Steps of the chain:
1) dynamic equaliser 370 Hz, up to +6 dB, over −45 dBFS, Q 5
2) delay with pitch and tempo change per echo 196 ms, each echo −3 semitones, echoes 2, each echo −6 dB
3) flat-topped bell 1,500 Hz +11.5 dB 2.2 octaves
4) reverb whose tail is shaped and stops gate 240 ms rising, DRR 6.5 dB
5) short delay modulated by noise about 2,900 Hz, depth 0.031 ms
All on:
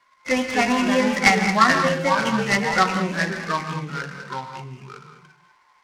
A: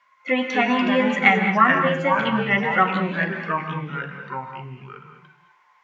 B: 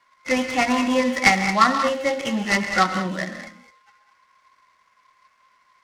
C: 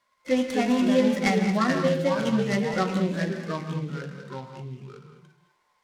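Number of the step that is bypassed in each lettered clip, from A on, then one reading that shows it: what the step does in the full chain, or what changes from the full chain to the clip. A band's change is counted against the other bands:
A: 5, 4 kHz band −4.0 dB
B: 2, 125 Hz band −4.0 dB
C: 3, 250 Hz band +9.0 dB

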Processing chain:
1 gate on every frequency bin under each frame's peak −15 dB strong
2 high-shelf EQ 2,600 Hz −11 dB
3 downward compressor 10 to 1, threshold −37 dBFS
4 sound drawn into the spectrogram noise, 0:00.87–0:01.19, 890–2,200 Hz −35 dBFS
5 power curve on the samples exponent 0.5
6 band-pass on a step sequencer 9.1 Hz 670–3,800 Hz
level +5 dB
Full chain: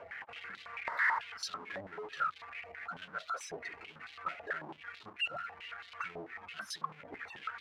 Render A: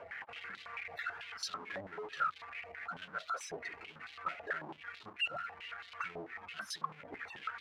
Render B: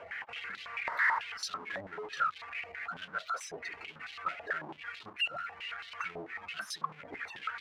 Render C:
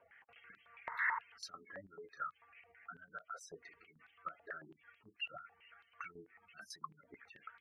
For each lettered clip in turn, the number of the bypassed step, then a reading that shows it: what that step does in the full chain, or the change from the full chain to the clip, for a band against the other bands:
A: 4, 2 kHz band −3.5 dB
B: 2, 4 kHz band +1.5 dB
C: 5, change in crest factor +4.5 dB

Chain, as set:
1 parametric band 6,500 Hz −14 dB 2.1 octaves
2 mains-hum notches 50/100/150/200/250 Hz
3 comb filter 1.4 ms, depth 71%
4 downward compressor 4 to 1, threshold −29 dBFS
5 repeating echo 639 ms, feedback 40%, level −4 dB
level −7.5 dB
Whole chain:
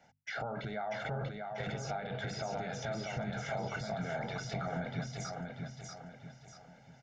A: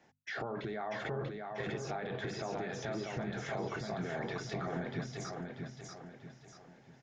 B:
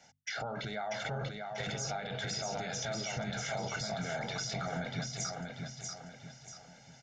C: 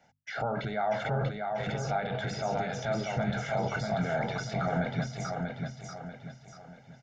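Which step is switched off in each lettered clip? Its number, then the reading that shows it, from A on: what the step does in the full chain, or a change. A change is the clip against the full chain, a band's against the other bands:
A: 3, 250 Hz band +3.0 dB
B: 1, 8 kHz band +10.5 dB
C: 4, average gain reduction 5.0 dB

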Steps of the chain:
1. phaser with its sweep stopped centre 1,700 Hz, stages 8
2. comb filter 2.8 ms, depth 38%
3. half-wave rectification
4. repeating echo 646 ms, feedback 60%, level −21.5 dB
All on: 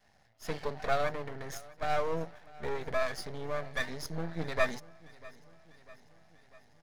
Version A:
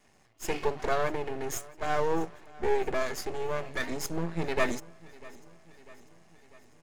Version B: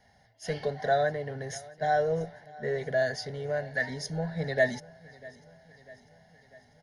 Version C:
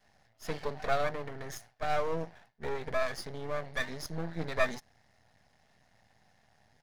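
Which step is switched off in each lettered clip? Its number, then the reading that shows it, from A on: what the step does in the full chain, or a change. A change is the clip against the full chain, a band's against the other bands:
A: 1, 8 kHz band +6.0 dB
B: 3, change in crest factor −3.0 dB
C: 4, echo-to-direct ratio −19.5 dB to none audible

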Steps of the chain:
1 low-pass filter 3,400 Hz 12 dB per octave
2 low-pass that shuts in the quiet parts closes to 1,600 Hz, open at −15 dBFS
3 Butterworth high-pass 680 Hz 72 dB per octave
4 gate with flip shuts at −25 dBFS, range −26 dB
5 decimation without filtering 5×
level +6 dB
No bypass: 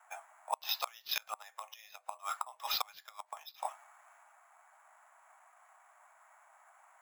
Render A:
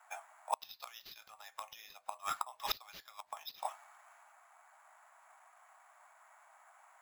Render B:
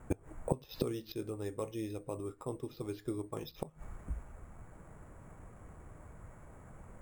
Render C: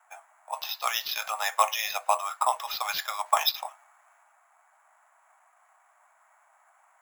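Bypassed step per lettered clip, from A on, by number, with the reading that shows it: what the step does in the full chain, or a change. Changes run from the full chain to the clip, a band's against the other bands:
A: 1, 4 kHz band −4.0 dB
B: 3, 500 Hz band +22.0 dB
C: 4, change in momentary loudness spread −4 LU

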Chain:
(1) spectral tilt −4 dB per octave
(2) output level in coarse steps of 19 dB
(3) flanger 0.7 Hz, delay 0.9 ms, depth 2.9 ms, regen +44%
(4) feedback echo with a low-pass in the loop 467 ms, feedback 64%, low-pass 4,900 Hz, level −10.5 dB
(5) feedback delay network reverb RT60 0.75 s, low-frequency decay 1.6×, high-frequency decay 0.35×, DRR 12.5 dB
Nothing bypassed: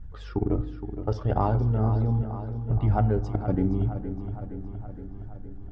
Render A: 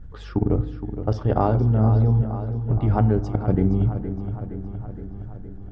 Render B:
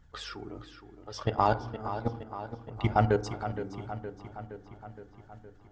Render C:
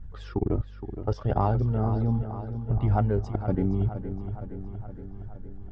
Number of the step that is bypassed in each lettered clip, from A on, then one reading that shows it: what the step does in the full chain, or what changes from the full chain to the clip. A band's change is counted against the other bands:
3, 1 kHz band −2.0 dB
1, 2 kHz band +11.5 dB
5, echo-to-direct ratio −7.0 dB to −9.0 dB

